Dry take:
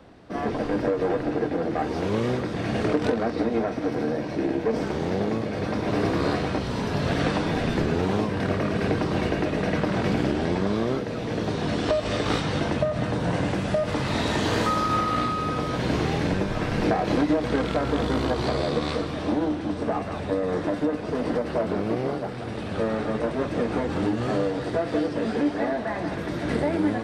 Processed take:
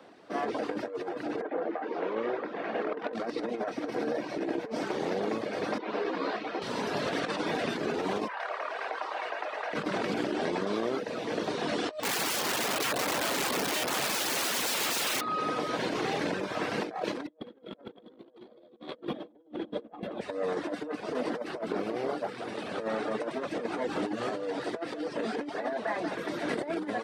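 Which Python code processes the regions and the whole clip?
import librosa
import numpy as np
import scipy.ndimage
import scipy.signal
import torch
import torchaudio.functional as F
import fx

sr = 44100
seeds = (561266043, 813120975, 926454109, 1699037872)

y = fx.chain(x, sr, fx.bandpass_edges(low_hz=270.0, high_hz=2000.0),
    fx.hum_notches(base_hz=50, count=8), at=(1.41, 3.13))
y = fx.chain(y, sr, fx.bandpass_edges(low_hz=230.0, high_hz=4000.0),
    fx.ensemble(), at=(5.78, 6.62))
y = fx.chain(y, sr, fx.highpass(hz=790.0, slope=24),
    fx.tilt_eq(slope=-4.5),
    fx.env_flatten(amount_pct=50), at=(8.28, 9.73))
y = fx.chain(y, sr, fx.overflow_wrap(gain_db=24.0),
    fx.low_shelf(hz=470.0, db=8.0), at=(12.02, 15.21))
y = fx.chain(y, sr, fx.band_shelf(hz=6700.0, db=-11.0, octaves=1.1),
    fx.small_body(hz=(230.0, 340.0, 490.0, 3300.0), ring_ms=35, db=16), at=(17.27, 20.21))
y = scipy.signal.sosfilt(scipy.signal.butter(2, 310.0, 'highpass', fs=sr, output='sos'), y)
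y = fx.dereverb_blind(y, sr, rt60_s=0.55)
y = fx.over_compress(y, sr, threshold_db=-29.0, ratio=-0.5)
y = y * librosa.db_to_amplitude(-4.5)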